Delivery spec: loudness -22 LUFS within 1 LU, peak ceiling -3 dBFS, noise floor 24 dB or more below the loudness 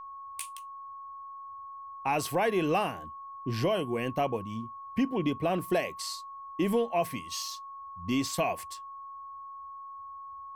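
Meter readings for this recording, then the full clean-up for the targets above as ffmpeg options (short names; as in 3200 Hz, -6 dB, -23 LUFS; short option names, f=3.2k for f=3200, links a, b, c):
steady tone 1100 Hz; tone level -41 dBFS; loudness -31.5 LUFS; peak -16.5 dBFS; loudness target -22.0 LUFS
-> -af "bandreject=f=1.1k:w=30"
-af "volume=9.5dB"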